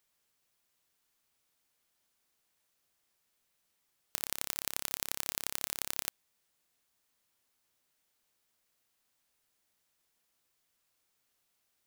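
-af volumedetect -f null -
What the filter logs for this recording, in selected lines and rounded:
mean_volume: -46.1 dB
max_volume: -4.2 dB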